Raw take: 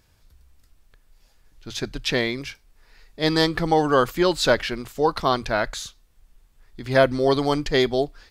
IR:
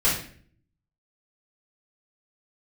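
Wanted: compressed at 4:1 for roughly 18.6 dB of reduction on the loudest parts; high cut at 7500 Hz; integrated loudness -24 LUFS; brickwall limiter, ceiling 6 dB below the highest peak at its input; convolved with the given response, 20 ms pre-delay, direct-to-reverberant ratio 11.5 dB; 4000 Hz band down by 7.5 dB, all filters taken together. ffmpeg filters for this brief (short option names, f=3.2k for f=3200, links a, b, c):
-filter_complex "[0:a]lowpass=7.5k,equalizer=f=4k:t=o:g=-9,acompressor=threshold=-36dB:ratio=4,alimiter=level_in=4.5dB:limit=-24dB:level=0:latency=1,volume=-4.5dB,asplit=2[a][b];[1:a]atrim=start_sample=2205,adelay=20[c];[b][c]afir=irnorm=-1:irlink=0,volume=-25.5dB[d];[a][d]amix=inputs=2:normalize=0,volume=16dB"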